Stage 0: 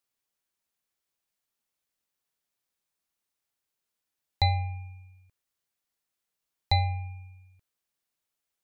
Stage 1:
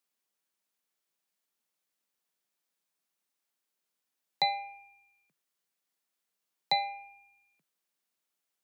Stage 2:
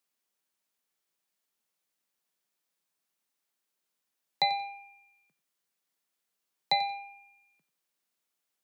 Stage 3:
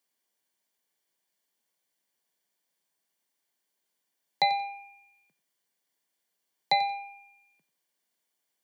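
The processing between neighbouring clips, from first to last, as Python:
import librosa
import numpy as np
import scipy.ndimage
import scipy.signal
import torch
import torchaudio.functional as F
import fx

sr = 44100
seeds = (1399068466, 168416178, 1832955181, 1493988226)

y1 = scipy.signal.sosfilt(scipy.signal.butter(12, 150.0, 'highpass', fs=sr, output='sos'), x)
y2 = fx.echo_feedback(y1, sr, ms=90, feedback_pct=23, wet_db=-14.5)
y2 = F.gain(torch.from_numpy(y2), 1.0).numpy()
y3 = fx.notch_comb(y2, sr, f0_hz=1300.0)
y3 = F.gain(torch.from_numpy(y3), 3.5).numpy()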